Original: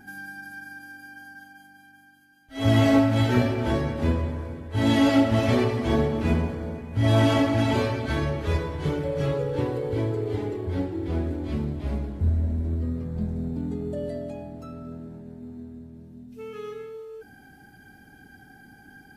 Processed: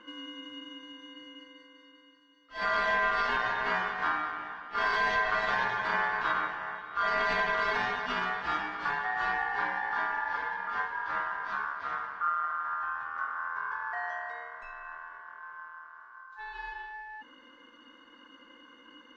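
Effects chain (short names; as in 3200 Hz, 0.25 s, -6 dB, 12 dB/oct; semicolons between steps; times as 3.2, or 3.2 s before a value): Bessel low-pass 3400 Hz, order 6; low shelf 180 Hz -6.5 dB; limiter -17.5 dBFS, peak gain reduction 7 dB; ring modulator 1300 Hz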